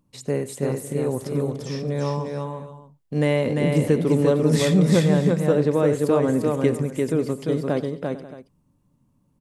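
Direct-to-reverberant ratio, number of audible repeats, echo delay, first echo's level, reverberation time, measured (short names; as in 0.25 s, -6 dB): none, 5, 91 ms, -19.5 dB, none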